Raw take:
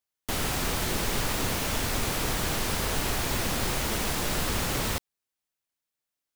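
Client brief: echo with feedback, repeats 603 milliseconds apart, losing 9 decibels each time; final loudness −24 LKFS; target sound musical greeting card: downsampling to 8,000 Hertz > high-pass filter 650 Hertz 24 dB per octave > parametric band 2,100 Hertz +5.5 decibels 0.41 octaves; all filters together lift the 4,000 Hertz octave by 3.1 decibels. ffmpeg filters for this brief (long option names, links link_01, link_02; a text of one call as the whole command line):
ffmpeg -i in.wav -af "equalizer=frequency=4000:width_type=o:gain=3.5,aecho=1:1:603|1206|1809|2412:0.355|0.124|0.0435|0.0152,aresample=8000,aresample=44100,highpass=frequency=650:width=0.5412,highpass=frequency=650:width=1.3066,equalizer=frequency=2100:width_type=o:width=0.41:gain=5.5,volume=6dB" out.wav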